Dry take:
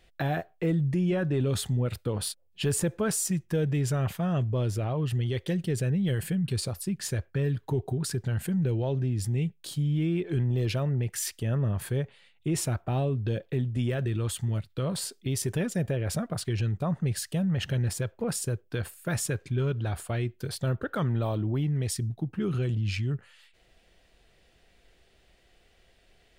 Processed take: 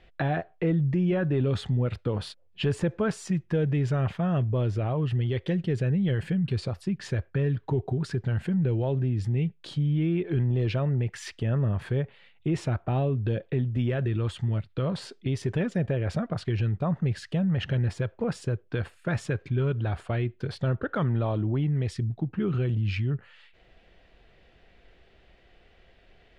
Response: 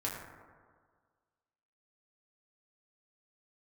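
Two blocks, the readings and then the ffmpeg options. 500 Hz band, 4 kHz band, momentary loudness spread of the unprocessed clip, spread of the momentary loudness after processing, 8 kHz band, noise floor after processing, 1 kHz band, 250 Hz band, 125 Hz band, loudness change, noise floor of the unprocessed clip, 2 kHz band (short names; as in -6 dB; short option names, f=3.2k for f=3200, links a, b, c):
+1.5 dB, -3.0 dB, 5 LU, 5 LU, under -10 dB, -59 dBFS, +2.0 dB, +1.5 dB, +1.5 dB, +1.5 dB, -63 dBFS, +1.5 dB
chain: -filter_complex "[0:a]lowpass=3k,asplit=2[a][b];[b]acompressor=threshold=-37dB:ratio=6,volume=-2dB[c];[a][c]amix=inputs=2:normalize=0"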